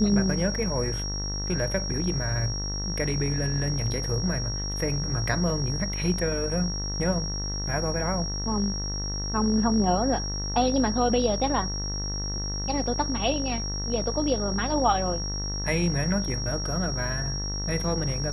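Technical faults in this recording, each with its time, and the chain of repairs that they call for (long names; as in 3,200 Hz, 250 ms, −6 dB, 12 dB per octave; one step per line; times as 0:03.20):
mains buzz 50 Hz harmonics 40 −32 dBFS
whistle 5,600 Hz −32 dBFS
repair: notch filter 5,600 Hz, Q 30
hum removal 50 Hz, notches 40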